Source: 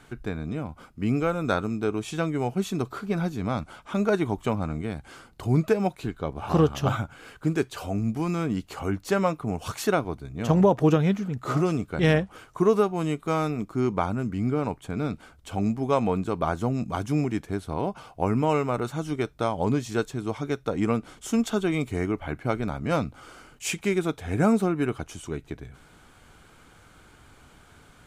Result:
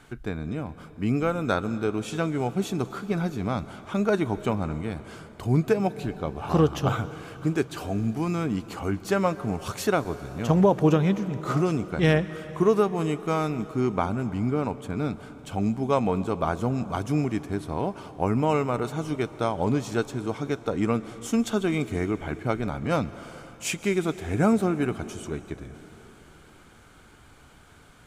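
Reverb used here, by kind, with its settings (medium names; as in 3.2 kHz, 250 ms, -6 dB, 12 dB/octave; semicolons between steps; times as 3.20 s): plate-style reverb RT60 4.1 s, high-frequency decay 0.95×, pre-delay 110 ms, DRR 14.5 dB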